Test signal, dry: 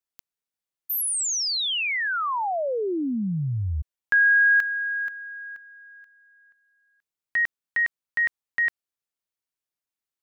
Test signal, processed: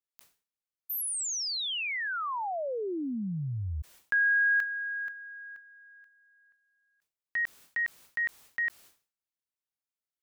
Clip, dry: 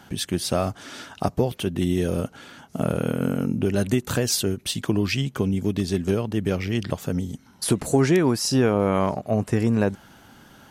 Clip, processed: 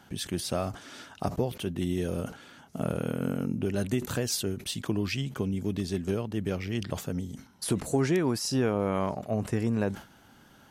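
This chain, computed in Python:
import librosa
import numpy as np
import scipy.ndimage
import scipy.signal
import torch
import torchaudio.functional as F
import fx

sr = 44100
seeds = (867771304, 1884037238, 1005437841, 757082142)

y = fx.sustainer(x, sr, db_per_s=150.0)
y = F.gain(torch.from_numpy(y), -7.0).numpy()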